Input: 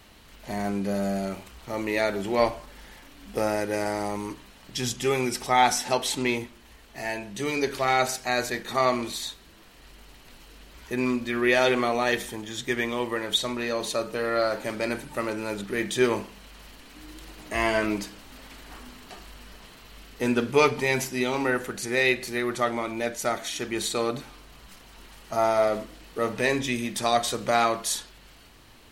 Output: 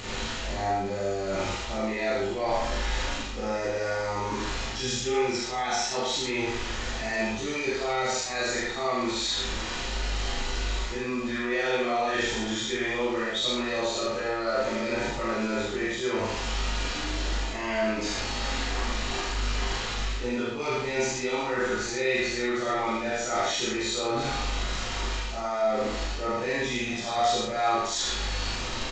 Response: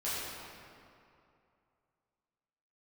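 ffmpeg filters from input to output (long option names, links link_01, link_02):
-filter_complex "[0:a]aeval=exprs='val(0)+0.5*0.0188*sgn(val(0))':channel_layout=same,areverse,acompressor=threshold=-33dB:ratio=6,areverse,aecho=1:1:40.82|78.72|119.5:0.562|0.794|0.316[link_01];[1:a]atrim=start_sample=2205,atrim=end_sample=3087,asetrate=35721,aresample=44100[link_02];[link_01][link_02]afir=irnorm=-1:irlink=0,acompressor=mode=upward:threshold=-42dB:ratio=2.5,volume=1.5dB" -ar 16000 -c:a g722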